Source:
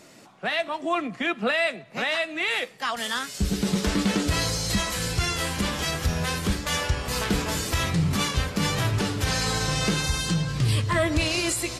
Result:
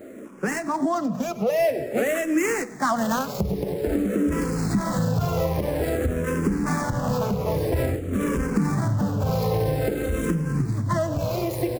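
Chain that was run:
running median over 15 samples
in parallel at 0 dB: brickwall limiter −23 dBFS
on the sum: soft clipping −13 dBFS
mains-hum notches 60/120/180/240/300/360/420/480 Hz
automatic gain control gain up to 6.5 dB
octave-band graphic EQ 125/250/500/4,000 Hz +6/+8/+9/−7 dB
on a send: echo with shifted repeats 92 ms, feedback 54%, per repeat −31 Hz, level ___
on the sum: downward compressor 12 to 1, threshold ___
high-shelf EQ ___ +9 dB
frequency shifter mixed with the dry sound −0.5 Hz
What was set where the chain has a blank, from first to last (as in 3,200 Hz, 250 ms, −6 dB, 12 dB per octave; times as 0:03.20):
−19 dB, −17 dBFS, 3,800 Hz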